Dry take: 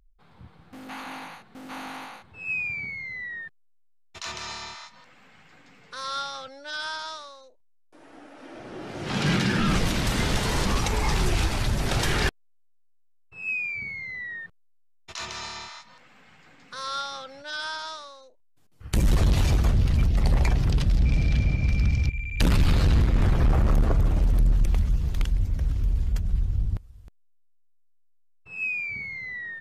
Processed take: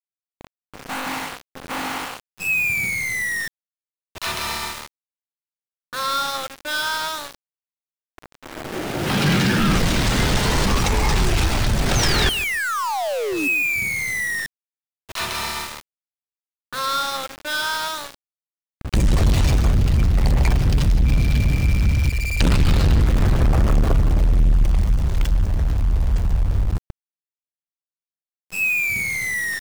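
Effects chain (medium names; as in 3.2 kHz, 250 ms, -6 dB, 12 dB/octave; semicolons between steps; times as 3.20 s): in parallel at +1 dB: compression 5:1, threshold -29 dBFS, peak gain reduction 11 dB; on the sum: painted sound fall, 11.95–13.48 s, 270–6600 Hz -28 dBFS; level-controlled noise filter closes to 2.9 kHz, open at -14.5 dBFS; power-law waveshaper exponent 0.7; steep low-pass 10 kHz 96 dB/octave; on a send: feedback delay 148 ms, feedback 21%, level -16 dB; on the sum: small samples zeroed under -25 dBFS; tape noise reduction on one side only decoder only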